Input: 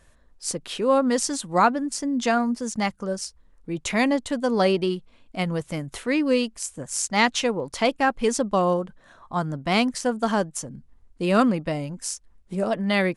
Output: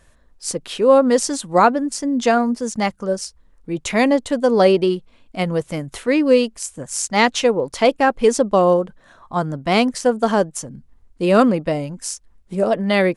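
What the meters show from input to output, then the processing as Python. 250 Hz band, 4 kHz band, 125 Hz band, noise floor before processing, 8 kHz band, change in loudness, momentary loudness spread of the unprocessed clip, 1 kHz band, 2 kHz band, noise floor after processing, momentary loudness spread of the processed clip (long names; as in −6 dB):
+4.5 dB, +3.0 dB, +3.5 dB, −57 dBFS, +3.0 dB, +6.0 dB, 11 LU, +5.0 dB, +3.5 dB, −54 dBFS, 14 LU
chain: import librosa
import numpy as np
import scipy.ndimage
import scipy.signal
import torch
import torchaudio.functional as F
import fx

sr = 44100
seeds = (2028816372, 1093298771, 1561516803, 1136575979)

y = fx.dynamic_eq(x, sr, hz=480.0, q=1.2, threshold_db=-34.0, ratio=4.0, max_db=6)
y = y * librosa.db_to_amplitude(3.0)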